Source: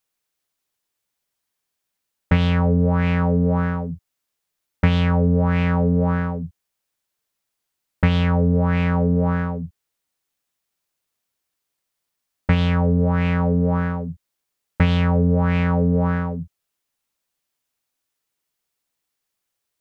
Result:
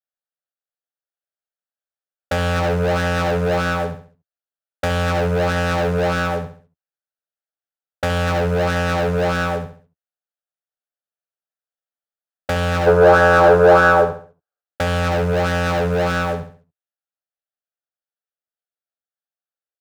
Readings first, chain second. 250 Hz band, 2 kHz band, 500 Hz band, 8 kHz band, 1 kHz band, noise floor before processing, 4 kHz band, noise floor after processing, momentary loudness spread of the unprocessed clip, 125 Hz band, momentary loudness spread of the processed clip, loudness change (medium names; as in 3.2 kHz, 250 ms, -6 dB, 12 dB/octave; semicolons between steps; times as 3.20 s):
-5.0 dB, +9.5 dB, +9.5 dB, no reading, +9.5 dB, -80 dBFS, +6.0 dB, under -85 dBFS, 12 LU, -4.0 dB, 15 LU, +2.0 dB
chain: three-band isolator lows -18 dB, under 360 Hz, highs -14 dB, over 2 kHz; static phaser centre 1.5 kHz, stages 8; waveshaping leveller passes 5; time-frequency box 12.87–14.61 s, 290–1700 Hz +10 dB; on a send: feedback delay 68 ms, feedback 35%, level -10 dB